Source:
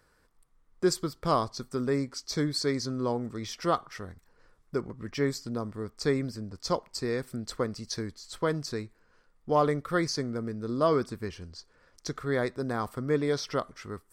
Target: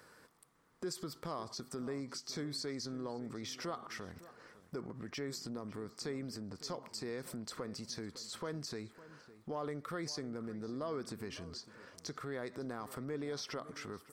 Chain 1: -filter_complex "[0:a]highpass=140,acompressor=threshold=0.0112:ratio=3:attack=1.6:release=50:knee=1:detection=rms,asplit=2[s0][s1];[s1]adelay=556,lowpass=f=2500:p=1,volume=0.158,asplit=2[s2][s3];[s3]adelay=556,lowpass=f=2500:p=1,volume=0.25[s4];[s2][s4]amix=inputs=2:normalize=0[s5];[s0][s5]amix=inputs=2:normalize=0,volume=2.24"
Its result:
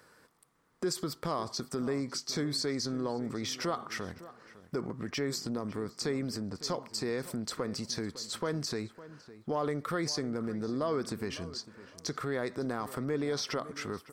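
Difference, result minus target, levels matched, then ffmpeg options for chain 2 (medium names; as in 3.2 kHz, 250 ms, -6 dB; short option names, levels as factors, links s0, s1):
compression: peak gain reduction -8 dB
-filter_complex "[0:a]highpass=140,acompressor=threshold=0.00282:ratio=3:attack=1.6:release=50:knee=1:detection=rms,asplit=2[s0][s1];[s1]adelay=556,lowpass=f=2500:p=1,volume=0.158,asplit=2[s2][s3];[s3]adelay=556,lowpass=f=2500:p=1,volume=0.25[s4];[s2][s4]amix=inputs=2:normalize=0[s5];[s0][s5]amix=inputs=2:normalize=0,volume=2.24"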